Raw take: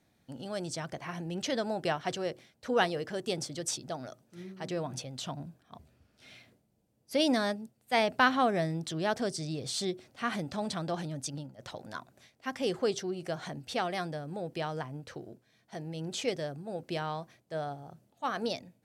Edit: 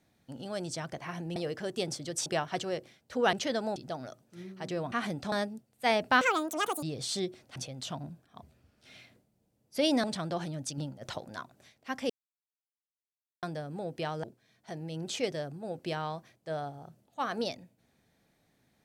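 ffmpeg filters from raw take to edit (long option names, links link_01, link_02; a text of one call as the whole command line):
ffmpeg -i in.wav -filter_complex "[0:a]asplit=16[link_01][link_02][link_03][link_04][link_05][link_06][link_07][link_08][link_09][link_10][link_11][link_12][link_13][link_14][link_15][link_16];[link_01]atrim=end=1.362[link_17];[link_02]atrim=start=2.858:end=3.762[link_18];[link_03]atrim=start=1.788:end=2.862[link_19];[link_04]atrim=start=1.358:end=1.792[link_20];[link_05]atrim=start=3.758:end=4.922[link_21];[link_06]atrim=start=10.208:end=10.612[link_22];[link_07]atrim=start=7.398:end=8.294[link_23];[link_08]atrim=start=8.29:end=9.48,asetpts=PTS-STARTPTS,asetrate=85113,aresample=44100,atrim=end_sample=27191,asetpts=PTS-STARTPTS[link_24];[link_09]atrim=start=9.476:end=10.212[link_25];[link_10]atrim=start=4.918:end=7.402[link_26];[link_11]atrim=start=10.608:end=11.352[link_27];[link_12]atrim=start=11.348:end=11.762,asetpts=PTS-STARTPTS,volume=4.5dB[link_28];[link_13]atrim=start=11.758:end=12.67,asetpts=PTS-STARTPTS,afade=type=out:start_time=0.908:duration=0.004:curve=hsin[link_29];[link_14]atrim=start=12.67:end=14,asetpts=PTS-STARTPTS,volume=0[link_30];[link_15]atrim=start=14:end=14.812,asetpts=PTS-STARTPTS,afade=type=in:duration=0.004:curve=hsin[link_31];[link_16]atrim=start=15.278[link_32];[link_17][link_18]acrossfade=duration=0.004:curve1=hsin:curve2=hsin[link_33];[link_33][link_19]acrossfade=duration=0.004:curve1=hsin:curve2=hsin[link_34];[link_34][link_20]acrossfade=duration=0.004:curve1=hsin:curve2=hsin[link_35];[link_35][link_21]acrossfade=duration=0.004:curve1=hsin:curve2=hsin[link_36];[link_36][link_22]acrossfade=duration=0.004:curve1=hsin:curve2=hsin[link_37];[link_37][link_23]acrossfade=duration=0.004:curve1=hsin:curve2=hsin[link_38];[link_38][link_24]acrossfade=duration=0.004:curve1=hsin:curve2=hsin[link_39];[link_39][link_25]acrossfade=duration=0.004:curve1=hsin:curve2=hsin[link_40];[link_40][link_26]acrossfade=duration=0.004:curve1=hsin:curve2=hsin[link_41];[link_41][link_27]acrossfade=duration=0.004:curve1=hsin:curve2=hsin[link_42];[link_42][link_28]acrossfade=duration=0.004:curve1=hsin:curve2=hsin[link_43];[link_29][link_30][link_31]concat=n=3:v=0:a=1[link_44];[link_43][link_44]acrossfade=duration=0.004:curve1=hsin:curve2=hsin[link_45];[link_45][link_32]acrossfade=duration=0.004:curve1=hsin:curve2=hsin" out.wav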